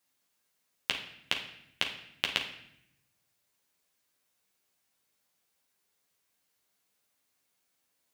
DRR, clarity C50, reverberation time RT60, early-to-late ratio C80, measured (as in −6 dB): 0.5 dB, 7.0 dB, 0.75 s, 11.5 dB